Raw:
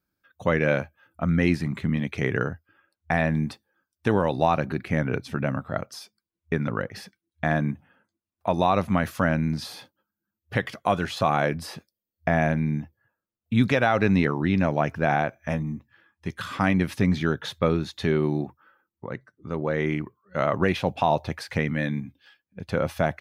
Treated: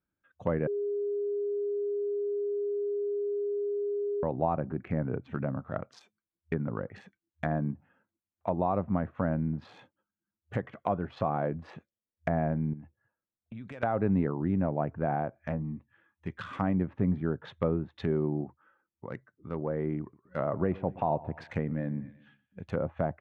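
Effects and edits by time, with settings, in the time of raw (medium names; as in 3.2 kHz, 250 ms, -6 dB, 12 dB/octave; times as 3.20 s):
0.67–4.23 s: bleep 408 Hz -22.5 dBFS
12.73–13.83 s: compression 5:1, threshold -35 dBFS
20.01–22.69 s: feedback delay 120 ms, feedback 44%, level -19 dB
whole clip: local Wiener filter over 9 samples; low-pass that closes with the level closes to 920 Hz, closed at -22.5 dBFS; trim -5.5 dB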